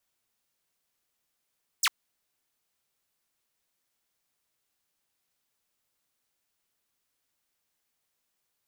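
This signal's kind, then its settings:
single falling chirp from 9,100 Hz, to 910 Hz, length 0.05 s saw, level −18 dB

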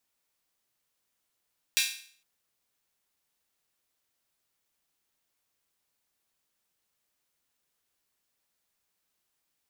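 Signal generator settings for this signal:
open synth hi-hat length 0.46 s, high-pass 2,600 Hz, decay 0.51 s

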